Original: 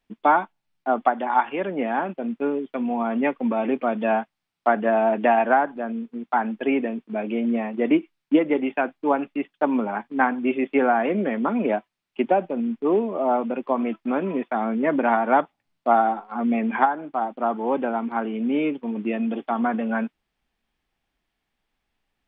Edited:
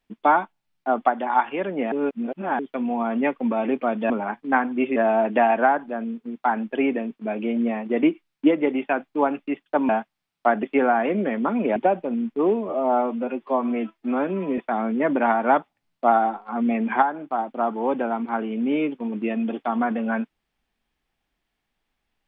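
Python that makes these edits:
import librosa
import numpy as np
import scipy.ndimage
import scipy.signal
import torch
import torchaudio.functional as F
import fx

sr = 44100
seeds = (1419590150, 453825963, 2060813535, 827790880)

y = fx.edit(x, sr, fx.reverse_span(start_s=1.92, length_s=0.67),
    fx.swap(start_s=4.1, length_s=0.74, other_s=9.77, other_length_s=0.86),
    fx.cut(start_s=11.76, length_s=0.46),
    fx.stretch_span(start_s=13.15, length_s=1.26, factor=1.5), tone=tone)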